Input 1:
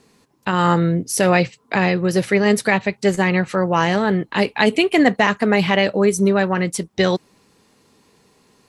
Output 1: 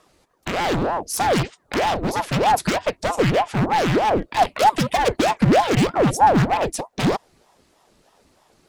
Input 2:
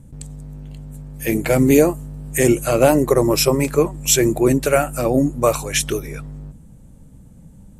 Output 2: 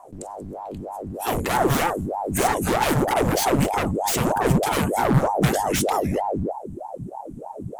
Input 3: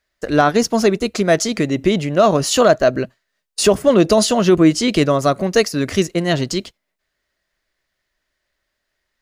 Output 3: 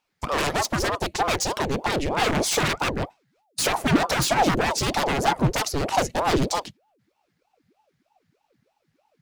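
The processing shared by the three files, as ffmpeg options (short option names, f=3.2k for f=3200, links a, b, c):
-af "aeval=exprs='0.168*(abs(mod(val(0)/0.168+3,4)-2)-1)':c=same,asubboost=boost=6:cutoff=100,aeval=exprs='val(0)*sin(2*PI*500*n/s+500*0.75/3.2*sin(2*PI*3.2*n/s))':c=same"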